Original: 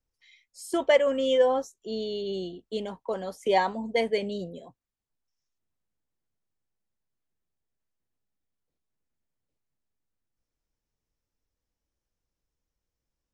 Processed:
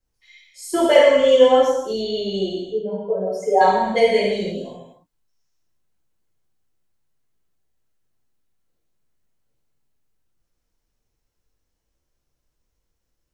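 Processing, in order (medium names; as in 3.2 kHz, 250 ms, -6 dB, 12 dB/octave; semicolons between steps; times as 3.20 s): 2.61–3.61 s: spectral contrast enhancement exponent 2.3; gated-style reverb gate 370 ms falling, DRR -7.5 dB; trim +1 dB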